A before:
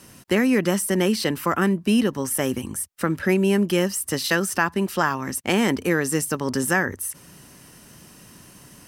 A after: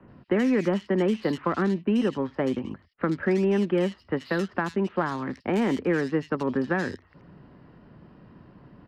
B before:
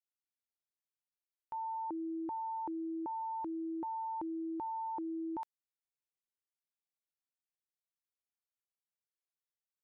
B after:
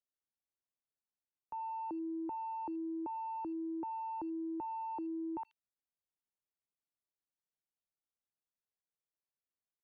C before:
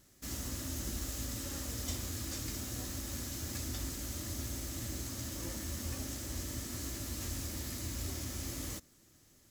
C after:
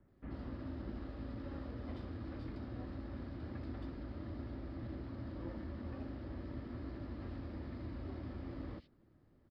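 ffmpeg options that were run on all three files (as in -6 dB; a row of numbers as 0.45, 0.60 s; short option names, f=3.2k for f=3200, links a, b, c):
-filter_complex "[0:a]aresample=11025,aresample=44100,acrossover=split=160|380[a][b][c];[a]acompressor=threshold=-45dB:ratio=4[d];[b]acompressor=threshold=-23dB:ratio=4[e];[c]acompressor=threshold=-24dB:ratio=4[f];[d][e][f]amix=inputs=3:normalize=0,acrossover=split=1800[g][h];[h]asoftclip=type=tanh:threshold=-29dB[i];[g][i]amix=inputs=2:normalize=0,adynamicsmooth=sensitivity=2.5:basefreq=1.4k,acrossover=split=2700[j][k];[k]adelay=80[l];[j][l]amix=inputs=2:normalize=0"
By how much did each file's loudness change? -4.0, -1.0, -6.5 LU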